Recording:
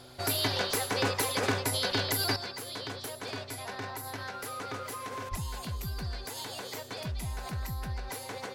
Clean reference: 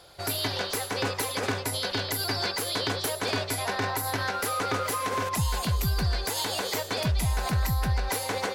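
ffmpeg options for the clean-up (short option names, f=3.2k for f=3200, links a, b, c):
-filter_complex "[0:a]bandreject=f=125.5:t=h:w=4,bandreject=f=251:t=h:w=4,bandreject=f=376.5:t=h:w=4,asplit=3[a][b][c];[a]afade=t=out:st=5.3:d=0.02[d];[b]highpass=f=140:w=0.5412,highpass=f=140:w=1.3066,afade=t=in:st=5.3:d=0.02,afade=t=out:st=5.42:d=0.02[e];[c]afade=t=in:st=5.42:d=0.02[f];[d][e][f]amix=inputs=3:normalize=0,asetnsamples=n=441:p=0,asendcmd='2.36 volume volume 10dB',volume=0dB"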